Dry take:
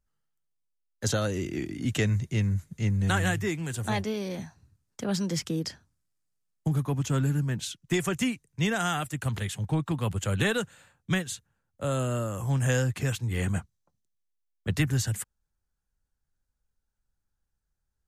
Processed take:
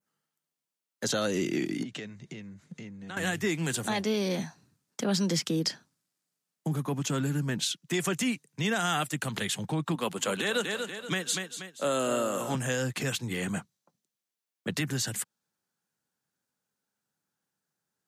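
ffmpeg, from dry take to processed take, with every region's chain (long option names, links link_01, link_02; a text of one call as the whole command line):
ffmpeg -i in.wav -filter_complex "[0:a]asettb=1/sr,asplit=3[link_01][link_02][link_03];[link_01]atrim=end=1.834[link_04];[link_02]atrim=start=1.83:end=3.17,asetpts=PTS-STARTPTS,afade=type=in:duration=0.004:curve=qsin,afade=type=out:start_time=1.336:duration=0.004:curve=qsin,lowpass=5400,acompressor=threshold=-40dB:ratio=8:attack=3.2:release=140:knee=1:detection=peak[link_05];[link_03]atrim=start=3.166[link_06];[link_04][link_05]acrossfade=duration=0.004:curve1=hsin:curve2=qsin[link_07];[link_07][link_06]acrossfade=duration=0.004:curve1=qsin:curve2=hsin,asettb=1/sr,asplit=3[link_08][link_09][link_10];[link_08]atrim=end=9.954[link_11];[link_09]atrim=start=9.95:end=12.55,asetpts=PTS-STARTPTS,afade=type=in:duration=0.004:curve=qsin,afade=type=out:start_time=2.596:duration=0.004:curve=qsin,highpass=240,aecho=1:1:239|478|717|956:0.282|0.118|0.0497|0.0209,atrim=end_sample=114660[link_12];[link_10]atrim=start=12.546[link_13];[link_11][link_12]acrossfade=duration=0.004:curve1=hsin:curve2=qsin[link_14];[link_14][link_13]acrossfade=duration=0.004:curve1=qsin:curve2=hsin,alimiter=limit=-24dB:level=0:latency=1:release=151,highpass=frequency=160:width=0.5412,highpass=frequency=160:width=1.3066,adynamicequalizer=threshold=0.00251:dfrequency=4100:dqfactor=1.2:tfrequency=4100:tqfactor=1.2:attack=5:release=100:ratio=0.375:range=2:mode=boostabove:tftype=bell,volume=5dB" out.wav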